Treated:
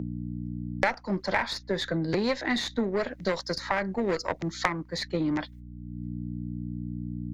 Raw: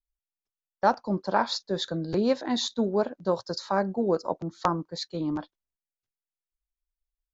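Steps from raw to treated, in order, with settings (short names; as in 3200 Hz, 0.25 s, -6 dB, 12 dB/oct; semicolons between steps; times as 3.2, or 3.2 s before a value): one diode to ground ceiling -23.5 dBFS; gate -57 dBFS, range -26 dB; bell 2000 Hz +14 dB 0.57 oct; hum 60 Hz, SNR 22 dB; three-band squash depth 100%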